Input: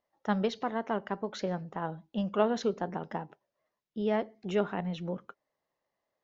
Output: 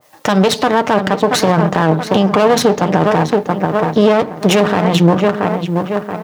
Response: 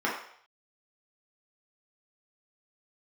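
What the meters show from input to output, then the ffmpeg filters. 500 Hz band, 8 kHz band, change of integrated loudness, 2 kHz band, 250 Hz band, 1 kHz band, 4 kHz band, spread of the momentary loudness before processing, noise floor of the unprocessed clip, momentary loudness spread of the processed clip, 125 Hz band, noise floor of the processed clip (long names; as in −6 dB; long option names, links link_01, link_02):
+19.5 dB, can't be measured, +19.5 dB, +22.0 dB, +20.0 dB, +21.0 dB, +24.0 dB, 10 LU, below −85 dBFS, 5 LU, +23.0 dB, −29 dBFS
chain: -filter_complex "[0:a]bandreject=frequency=60:width_type=h:width=6,bandreject=frequency=120:width_type=h:width=6,bandreject=frequency=180:width_type=h:width=6,bandreject=frequency=240:width_type=h:width=6,bandreject=frequency=300:width_type=h:width=6,bandreject=frequency=360:width_type=h:width=6,bandreject=frequency=420:width_type=h:width=6,asplit=2[link_01][link_02];[link_02]adelay=678,lowpass=frequency=2100:poles=1,volume=-12.5dB,asplit=2[link_03][link_04];[link_04]adelay=678,lowpass=frequency=2100:poles=1,volume=0.35,asplit=2[link_05][link_06];[link_06]adelay=678,lowpass=frequency=2100:poles=1,volume=0.35,asplit=2[link_07][link_08];[link_08]adelay=678,lowpass=frequency=2100:poles=1,volume=0.35[link_09];[link_01][link_03][link_05][link_07][link_09]amix=inputs=5:normalize=0,asoftclip=type=tanh:threshold=-19.5dB,acompressor=threshold=-40dB:ratio=3,highshelf=frequency=4200:gain=11.5,aeval=exprs='max(val(0),0)':channel_layout=same,highpass=frequency=96:width=0.5412,highpass=frequency=96:width=1.3066,bandreject=frequency=1400:width=25,aecho=1:1:6.6:0.33,alimiter=level_in=35.5dB:limit=-1dB:release=50:level=0:latency=1,adynamicequalizer=threshold=0.0501:dfrequency=1600:dqfactor=0.7:tfrequency=1600:tqfactor=0.7:attack=5:release=100:ratio=0.375:range=2:mode=cutabove:tftype=highshelf"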